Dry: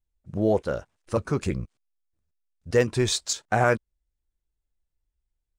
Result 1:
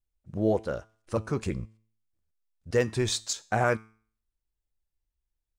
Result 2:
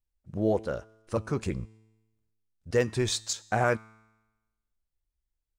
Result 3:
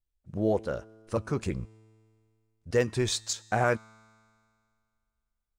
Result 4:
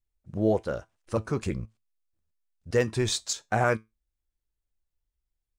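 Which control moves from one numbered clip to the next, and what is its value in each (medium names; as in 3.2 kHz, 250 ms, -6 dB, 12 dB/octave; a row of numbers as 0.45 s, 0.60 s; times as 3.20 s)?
feedback comb, decay: 0.48 s, 1.1 s, 2.2 s, 0.2 s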